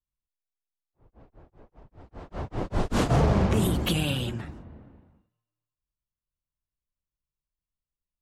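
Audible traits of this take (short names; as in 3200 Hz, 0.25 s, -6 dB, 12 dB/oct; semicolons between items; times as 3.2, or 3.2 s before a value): noise floor -93 dBFS; spectral tilt -5.5 dB/oct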